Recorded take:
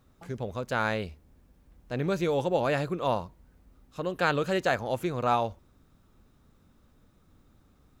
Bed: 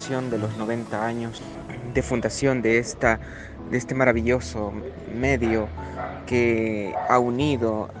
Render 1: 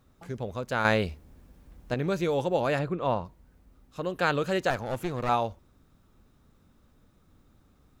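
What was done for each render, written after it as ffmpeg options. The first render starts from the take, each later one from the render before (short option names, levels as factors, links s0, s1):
-filter_complex "[0:a]asettb=1/sr,asplit=3[s0][s1][s2];[s0]atrim=end=2.794[s3];[s1]atrim=start=2.79:end=3.25,asetpts=PTS-STARTPTS,afade=t=in:d=0.004:c=qsin,afade=t=out:st=0.456:d=0.004:c=qsin,bass=f=250:g=2,treble=f=4000:g=-12[s4];[s2]atrim=start=3.246[s5];[s3][s4]acrossfade=d=0.004:c1=hsin:c2=qsin[s6];[s6][s5]acrossfade=d=0.004:c1=qsin:c2=hsin,asettb=1/sr,asplit=3[s7][s8][s9];[s7]atrim=end=4.704[s10];[s8]atrim=start=4.7:end=5.29,asetpts=PTS-STARTPTS,afade=t=in:d=0.004:c=qsin,afade=t=out:st=0.586:d=0.004:c=qsin,aeval=exprs='clip(val(0),-1,0.0237)':c=same[s11];[s9]atrim=start=5.286[s12];[s10][s11]acrossfade=d=0.004:c1=hsin:c2=qsin[s13];[s13][s12]acrossfade=d=0.004:c1=qsin:c2=hsin,asplit=3[s14][s15][s16];[s14]atrim=end=0.852[s17];[s15]atrim=start=0.848:end=1.942,asetpts=PTS-STARTPTS,volume=2[s18];[s16]atrim=start=1.938[s19];[s17][s18]acrossfade=d=0.004:c1=hsin:c2=hsin[s20];[s20][s19]acrossfade=d=0.004:c1=hsin:c2=hsin"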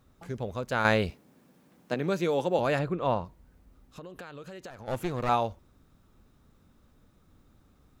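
-filter_complex "[0:a]asettb=1/sr,asplit=3[s0][s1][s2];[s0]atrim=end=1.104[s3];[s1]atrim=start=1.1:end=2.59,asetpts=PTS-STARTPTS,afade=t=in:d=0.004:c=qsin,afade=t=out:st=1.486:d=0.004:c=qsin,highpass=f=150:w=0.5412,highpass=f=150:w=1.3066[s4];[s2]atrim=start=2.586[s5];[s3][s4]acrossfade=d=0.004:c1=hsin:c2=qsin[s6];[s6][s5]acrossfade=d=0.004:c1=qsin:c2=hsin,asettb=1/sr,asplit=3[s7][s8][s9];[s7]atrim=end=3.244[s10];[s8]atrim=start=3.24:end=4.88,asetpts=PTS-STARTPTS,afade=t=in:d=0.004:c=qsin,afade=t=out:st=1.636:d=0.004:c=qsin,acompressor=threshold=0.0112:ratio=16:attack=3.2:release=140:knee=1:detection=peak[s11];[s9]atrim=start=4.876[s12];[s10][s11]acrossfade=d=0.004:c1=hsin:c2=qsin[s13];[s13][s12]acrossfade=d=0.004:c1=qsin:c2=hsin"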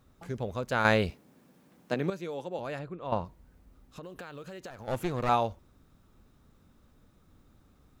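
-filter_complex "[0:a]asettb=1/sr,asplit=3[s0][s1][s2];[s0]atrim=end=4.034[s3];[s1]atrim=start=4.03:end=4.87,asetpts=PTS-STARTPTS,afade=t=in:d=0.004:c=qsin,afade=t=out:st=0.836:d=0.004:c=qsin,acrusher=bits=8:mode=log:mix=0:aa=0.000001[s4];[s2]atrim=start=4.866[s5];[s3][s4]acrossfade=d=0.004:c1=hsin:c2=qsin[s6];[s6][s5]acrossfade=d=0.004:c1=qsin:c2=hsin,asplit=3[s7][s8][s9];[s7]atrim=end=2.102[s10];[s8]atrim=start=2.098:end=3.122,asetpts=PTS-STARTPTS,volume=0.316[s11];[s9]atrim=start=3.118[s12];[s10][s11]acrossfade=d=0.004:c1=hsin:c2=hsin[s13];[s13][s12]acrossfade=d=0.004:c1=hsin:c2=hsin"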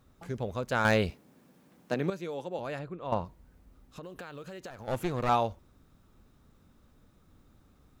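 -af "volume=6.68,asoftclip=hard,volume=0.15"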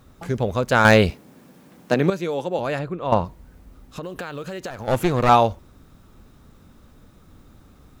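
-af "volume=3.76"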